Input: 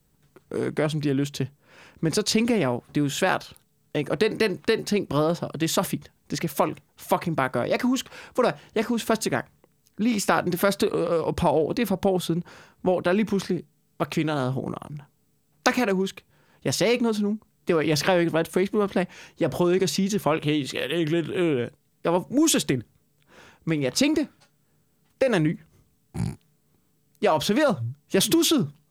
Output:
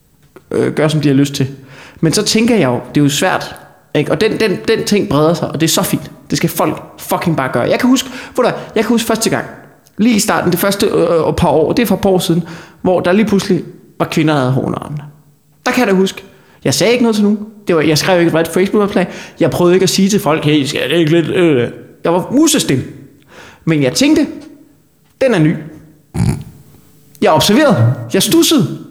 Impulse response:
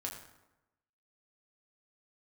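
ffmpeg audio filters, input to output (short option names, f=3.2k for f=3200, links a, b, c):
-filter_complex "[0:a]asettb=1/sr,asplit=3[a][b][c];[a]atrim=end=26.284[d];[b]atrim=start=26.28:end=28.04,asetpts=PTS-STARTPTS,afade=t=in:d=0.004:c=qsin,afade=t=out:st=1.756:d=0.004:c=qsin,acontrast=90[e];[c]atrim=start=28.036[f];[d][e]acrossfade=d=0.004:c1=hsin:c2=qsin[g];[g][f]acrossfade=d=0.004:c1=qsin:c2=hsin,asplit=2[h][i];[1:a]atrim=start_sample=2205[j];[i][j]afir=irnorm=-1:irlink=0,volume=-8dB[k];[h][k]amix=inputs=2:normalize=0,alimiter=level_in=13dB:limit=-1dB:release=50:level=0:latency=1,volume=-1dB"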